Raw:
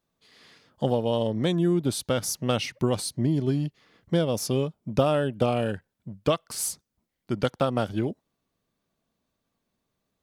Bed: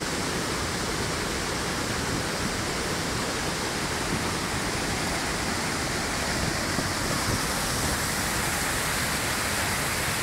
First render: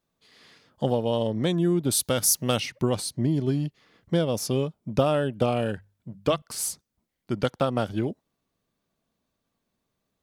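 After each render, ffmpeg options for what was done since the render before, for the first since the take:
-filter_complex "[0:a]asettb=1/sr,asplit=3[a][b][c];[a]atrim=end=1.914[d];[b]atrim=start=1.91:end=2.6,asetpts=PTS-STARTPTS,afade=t=in:d=0.004:c=qsin,afade=t=out:st=0.686:d=0.004:c=qsin,aemphasis=mode=production:type=50kf[e];[c]atrim=start=2.596[f];[d][e]acrossfade=d=0.004:c1=hsin:c2=qsin[g];[g][f]acrossfade=d=0.004:c1=qsin:c2=hsin,asettb=1/sr,asplit=3[h][i][j];[h]atrim=end=5.754[k];[i]atrim=start=5.75:end=6.42,asetpts=PTS-STARTPTS,afade=t=in:d=0.004:c=qsin,afade=t=out:st=0.666:d=0.004:c=qsin,bandreject=f=50:t=h:w=6,bandreject=f=100:t=h:w=6,bandreject=f=150:t=h:w=6,bandreject=f=200:t=h:w=6[l];[j]atrim=start=6.416[m];[k][l]acrossfade=d=0.004:c1=hsin:c2=qsin[n];[n][m]acrossfade=d=0.004:c1=qsin:c2=hsin"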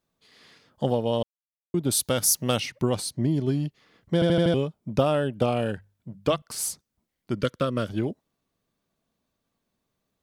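-filter_complex "[0:a]asettb=1/sr,asplit=3[a][b][c];[a]atrim=end=7.344[d];[b]atrim=start=7.34:end=7.87,asetpts=PTS-STARTPTS,afade=t=in:d=0.004:c=qsin,afade=t=out:st=0.526:d=0.004:c=qsin,asuperstop=centerf=800:order=4:qfactor=1.9[e];[c]atrim=start=7.866[f];[d][e]acrossfade=d=0.004:c1=hsin:c2=qsin[g];[g][f]acrossfade=d=0.004:c1=qsin:c2=hsin,asplit=8[h][i][j][k][l][m][n][o];[h]atrim=end=1.23,asetpts=PTS-STARTPTS,afade=t=out:st=1.226:d=0.004:c=hsin[p];[i]atrim=start=1.23:end=1.74,asetpts=PTS-STARTPTS,volume=0[q];[j]atrim=start=1.74:end=4.222,asetpts=PTS-STARTPTS,afade=t=in:d=0.004:c=hsin[r];[k]atrim=start=4.138:end=4.222[s];[l]atrim=start=4.138:end=4.222[t];[m]atrim=start=4.138:end=4.222[u];[n]atrim=start=4.138:end=4.222[v];[o]atrim=start=4.538[w];[p][q][r]concat=n=3:v=0:a=1[x];[x][s]acrossfade=d=0.004:c1=hsin:c2=hsin[y];[y][t]acrossfade=d=0.004:c1=hsin:c2=hsin[z];[z][u]acrossfade=d=0.004:c1=hsin:c2=hsin[aa];[aa][v]acrossfade=d=0.004:c1=hsin:c2=hsin[ab];[ab][w]acrossfade=d=0.004:c1=hsin:c2=hsin"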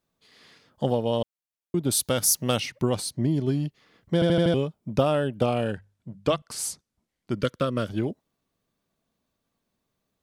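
-filter_complex "[0:a]asettb=1/sr,asplit=3[a][b][c];[a]atrim=end=5.614[d];[b]atrim=start=5.61:end=7.32,asetpts=PTS-STARTPTS,afade=t=in:d=0.004:c=qsin,afade=t=out:st=1.706:d=0.004:c=qsin,lowpass=11k[e];[c]atrim=start=7.316[f];[d][e]acrossfade=d=0.004:c1=hsin:c2=qsin[g];[g][f]acrossfade=d=0.004:c1=qsin:c2=hsin"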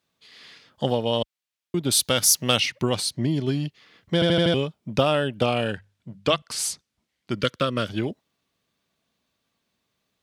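-af "highpass=49,equalizer=f=3.1k:w=0.53:g=9"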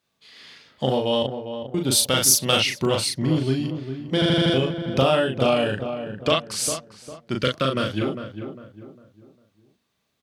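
-filter_complex "[0:a]asplit=2[a][b];[b]adelay=38,volume=-3dB[c];[a][c]amix=inputs=2:normalize=0,asplit=2[d][e];[e]adelay=402,lowpass=f=1.4k:p=1,volume=-8.5dB,asplit=2[f][g];[g]adelay=402,lowpass=f=1.4k:p=1,volume=0.38,asplit=2[h][i];[i]adelay=402,lowpass=f=1.4k:p=1,volume=0.38,asplit=2[j][k];[k]adelay=402,lowpass=f=1.4k:p=1,volume=0.38[l];[d][f][h][j][l]amix=inputs=5:normalize=0"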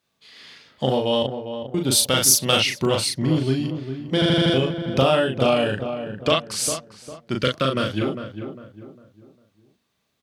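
-af "volume=1dB"

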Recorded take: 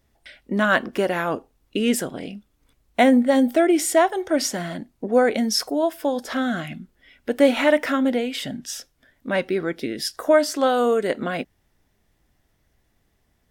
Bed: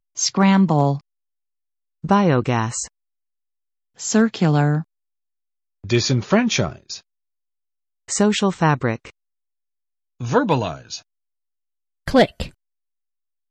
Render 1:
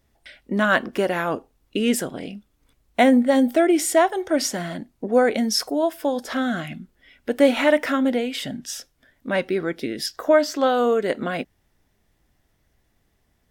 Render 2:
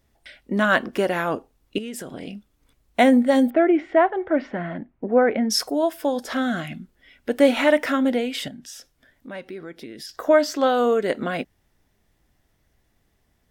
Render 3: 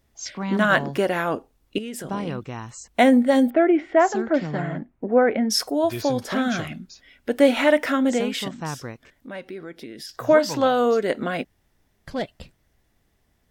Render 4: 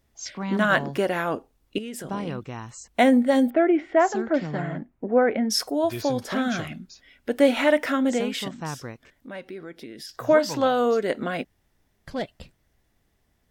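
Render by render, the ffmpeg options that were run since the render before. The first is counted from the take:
-filter_complex "[0:a]asettb=1/sr,asplit=3[a][b][c];[a]atrim=end=10.064[d];[b]atrim=start=10.06:end=11.08,asetpts=PTS-STARTPTS,afade=t=in:d=0.004:c=qsin,afade=t=out:st=1.016:d=0.004:c=qsin,equalizer=f=9.8k:w=2.2:g=-14.5[e];[c]atrim=start=11.076[f];[d][e]acrossfade=d=0.004:c1=hsin:c2=qsin[g];[g][f]acrossfade=d=0.004:c1=qsin:c2=hsin"
-filter_complex "[0:a]asettb=1/sr,asplit=3[a][b][c];[a]atrim=end=1.784[d];[b]atrim=start=1.78:end=2.27,asetpts=PTS-STARTPTS,afade=t=in:d=0.004:c=qsin,afade=t=out:st=0.486:d=0.004:c=qsin,acompressor=threshold=-29dB:ratio=12:attack=3.2:release=140:knee=1:detection=peak[e];[c]atrim=start=2.266[f];[d][e]acrossfade=d=0.004:c1=hsin:c2=qsin[g];[g][f]acrossfade=d=0.004:c1=qsin:c2=hsin,asettb=1/sr,asplit=3[h][i][j];[h]atrim=end=3.504[k];[i]atrim=start=3.5:end=5.5,asetpts=PTS-STARTPTS,afade=t=in:d=0.004:c=qsin,afade=t=out:st=1.996:d=0.004:c=qsin,lowpass=f=2.3k:w=0.5412,lowpass=f=2.3k:w=1.3066[l];[j]atrim=start=5.496[m];[k][l]acrossfade=d=0.004:c1=hsin:c2=qsin[n];[n][m]acrossfade=d=0.004:c1=qsin:c2=hsin,asettb=1/sr,asplit=3[o][p][q];[o]atrim=end=8.484[r];[p]atrim=start=8.48:end=10.09,asetpts=PTS-STARTPTS,afade=t=in:d=0.004:c=qsin,afade=t=out:st=1.606:d=0.004:c=qsin,acompressor=threshold=-42dB:ratio=2:attack=3.2:release=140:knee=1:detection=peak[s];[q]atrim=start=10.086[t];[r][s]acrossfade=d=0.004:c1=hsin:c2=qsin[u];[u][t]acrossfade=d=0.004:c1=qsin:c2=hsin"
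-filter_complex "[1:a]volume=-14dB[a];[0:a][a]amix=inputs=2:normalize=0"
-af "volume=-2dB"

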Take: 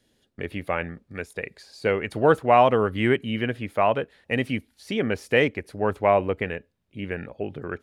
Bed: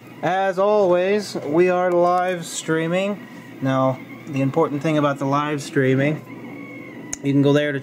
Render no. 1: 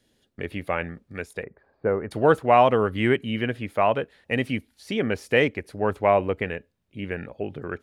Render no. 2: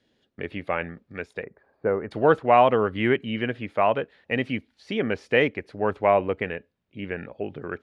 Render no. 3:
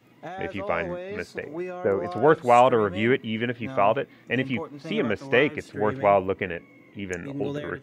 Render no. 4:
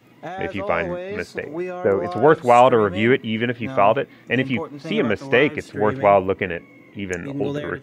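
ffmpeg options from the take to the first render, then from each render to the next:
-filter_complex "[0:a]asettb=1/sr,asplit=3[a][b][c];[a]atrim=end=1.434[d];[b]atrim=start=1.43:end=2.11,asetpts=PTS-STARTPTS,afade=t=in:d=0.004:c=qsin,afade=t=out:st=0.676:d=0.004:c=qsin,lowpass=f=1.4k:w=0.5412,lowpass=f=1.4k:w=1.3066[e];[c]atrim=start=2.106[f];[d][e]acrossfade=d=0.004:c1=hsin:c2=qsin[g];[g][f]acrossfade=d=0.004:c1=qsin:c2=hsin"
-af "lowpass=4.1k,lowshelf=f=76:g=-11"
-filter_complex "[1:a]volume=-16.5dB[a];[0:a][a]amix=inputs=2:normalize=0"
-af "volume=5dB,alimiter=limit=-2dB:level=0:latency=1"

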